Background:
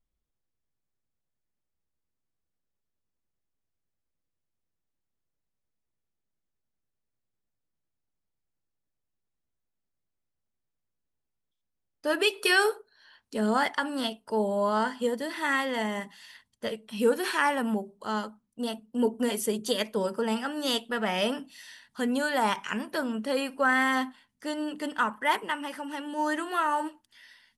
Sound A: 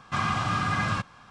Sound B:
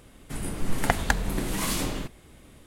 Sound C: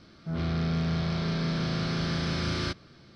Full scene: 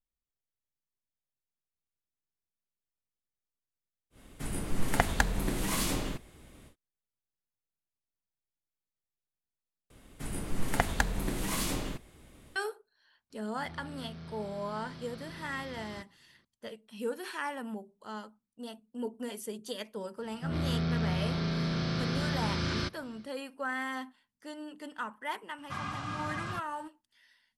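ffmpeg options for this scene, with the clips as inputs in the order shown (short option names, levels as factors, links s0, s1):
-filter_complex "[2:a]asplit=2[s0][s1];[3:a]asplit=2[s2][s3];[0:a]volume=0.282,asplit=2[s4][s5];[s4]atrim=end=9.904[s6];[s1]atrim=end=2.66,asetpts=PTS-STARTPTS,volume=0.596[s7];[s5]atrim=start=12.556[s8];[s0]atrim=end=2.66,asetpts=PTS-STARTPTS,volume=0.708,afade=t=in:d=0.1,afade=t=out:st=2.56:d=0.1,adelay=4100[s9];[s2]atrim=end=3.15,asetpts=PTS-STARTPTS,volume=0.133,afade=t=in:d=0.004:c=hsin,afade=t=out:st=3.146:d=0.004:c=hsin,adelay=13300[s10];[s3]atrim=end=3.15,asetpts=PTS-STARTPTS,volume=0.75,afade=t=in:d=0.1,afade=t=out:st=3.05:d=0.1,adelay=20160[s11];[1:a]atrim=end=1.3,asetpts=PTS-STARTPTS,volume=0.282,afade=t=in:d=0.004:c=hsin,afade=t=out:st=1.296:d=0.004:c=hsin,adelay=25580[s12];[s6][s7]acrossfade=d=0.004:c1=hsin:c2=hsin[s13];[s13][s8]acrossfade=d=0.004:c1=hsin:c2=hsin[s14];[s14][s9][s10][s11][s12]amix=inputs=5:normalize=0"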